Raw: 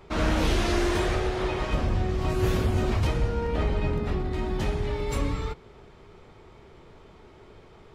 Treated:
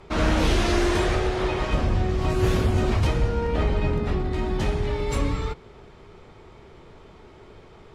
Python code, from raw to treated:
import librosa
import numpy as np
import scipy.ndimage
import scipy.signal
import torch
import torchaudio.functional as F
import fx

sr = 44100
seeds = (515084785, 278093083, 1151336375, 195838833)

y = scipy.signal.sosfilt(scipy.signal.butter(2, 12000.0, 'lowpass', fs=sr, output='sos'), x)
y = y * 10.0 ** (3.0 / 20.0)